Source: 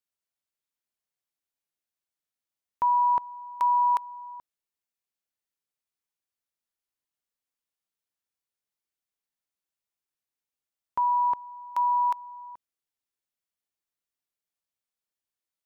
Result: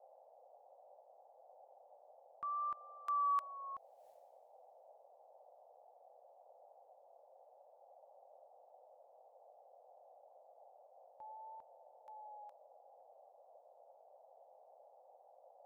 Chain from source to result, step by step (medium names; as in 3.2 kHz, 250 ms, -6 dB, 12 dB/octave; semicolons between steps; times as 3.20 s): Doppler pass-by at 4.07 s, 49 m/s, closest 3.2 m; vibrato 0.45 Hz 64 cents; band noise 510–820 Hz -74 dBFS; trim +11 dB